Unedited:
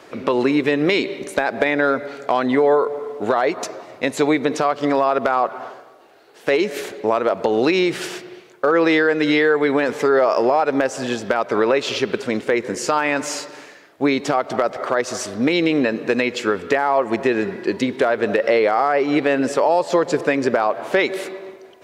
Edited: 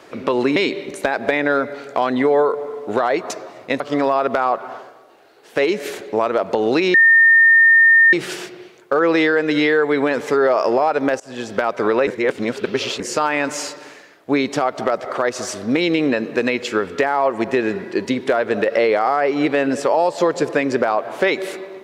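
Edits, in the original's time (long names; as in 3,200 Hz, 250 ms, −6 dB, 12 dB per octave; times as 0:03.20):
0:00.56–0:00.89: remove
0:04.13–0:04.71: remove
0:07.85: insert tone 1,820 Hz −7.5 dBFS 1.19 s
0:10.92–0:11.29: fade in, from −23 dB
0:11.79–0:12.72: reverse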